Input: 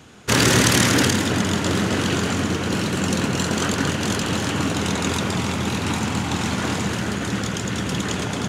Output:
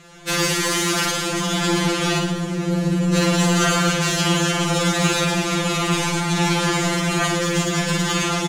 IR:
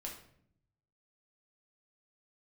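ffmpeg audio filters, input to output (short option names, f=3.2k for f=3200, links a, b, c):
-filter_complex "[0:a]lowshelf=f=150:t=q:w=3:g=8,dynaudnorm=f=690:g=3:m=11.5dB,alimiter=limit=-7dB:level=0:latency=1:release=428,asettb=1/sr,asplit=3[a][b][c];[a]atrim=end=2.194[d];[b]atrim=start=2.19:end=3.14,asetpts=PTS-STARTPTS,afade=t=in:d=0.004:c=qsin,afade=t=out:st=0.946:d=0.004:c=qsin,acrossover=split=620|5400[e][f][g];[e]acompressor=threshold=-15dB:ratio=4[h];[f]acompressor=threshold=-42dB:ratio=4[i];[g]acompressor=threshold=-48dB:ratio=4[j];[h][i][j]amix=inputs=3:normalize=0[k];[c]atrim=start=3.136[l];[d][k]acrossfade=d=0.004:c1=hsin:c2=qsin[m];[m][l]acrossfade=d=0.004:c1=qsin:c2=hsin,asoftclip=type=tanh:threshold=-11.5dB,aecho=1:1:50|107.5|173.6|249.7|337.1:0.631|0.398|0.251|0.158|0.1,afftfilt=real='re*2.83*eq(mod(b,8),0)':imag='im*2.83*eq(mod(b,8),0)':win_size=2048:overlap=0.75,volume=5.5dB"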